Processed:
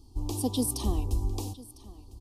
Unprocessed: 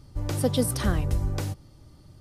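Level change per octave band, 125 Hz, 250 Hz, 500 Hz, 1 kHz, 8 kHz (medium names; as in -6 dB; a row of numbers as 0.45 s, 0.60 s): -6.0 dB, -2.5 dB, -8.0 dB, -4.0 dB, -0.5 dB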